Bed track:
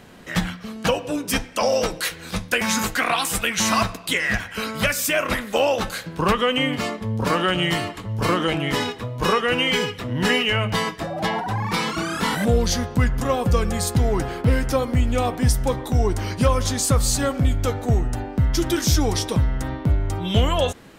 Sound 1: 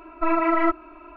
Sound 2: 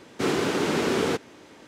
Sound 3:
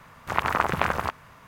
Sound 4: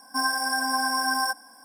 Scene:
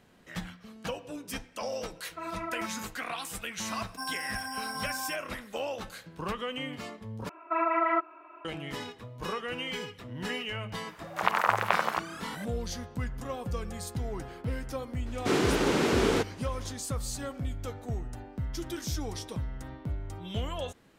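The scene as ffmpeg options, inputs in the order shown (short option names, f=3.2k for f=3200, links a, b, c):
-filter_complex "[1:a]asplit=2[a][b];[0:a]volume=-15dB[c];[a]highpass=340[d];[b]highpass=520,lowpass=2.8k[e];[3:a]highpass=f=450:w=0.5412,highpass=f=450:w=1.3066[f];[c]asplit=2[g][h];[g]atrim=end=7.294[i];[e]atrim=end=1.16,asetpts=PTS-STARTPTS,volume=-3.5dB[j];[h]atrim=start=8.446[k];[d]atrim=end=1.16,asetpts=PTS-STARTPTS,volume=-15dB,afade=t=in:d=0.004:c=hsin,afade=t=out:st=1.156:d=0.004:c=hsin,adelay=1950[l];[4:a]atrim=end=1.64,asetpts=PTS-STARTPTS,volume=-11.5dB,afade=t=in:d=0.004:c=hsin,afade=t=out:st=1.636:d=0.004:c=hsin,adelay=3830[m];[f]atrim=end=1.47,asetpts=PTS-STARTPTS,volume=-1.5dB,afade=t=in:d=0.004:c=hsin,afade=t=out:st=1.466:d=0.004:c=hsin,adelay=10890[n];[2:a]atrim=end=1.67,asetpts=PTS-STARTPTS,volume=-1.5dB,afade=t=in:d=0.004:c=hsin,afade=t=out:st=1.666:d=0.004:c=hsin,adelay=15060[o];[i][j]acrossfade=d=0.004:c1=hsin:c2=hsin[p];[p][k]acrossfade=d=0.004:c1=hsin:c2=hsin[q];[q][l][m][n][o]amix=inputs=5:normalize=0"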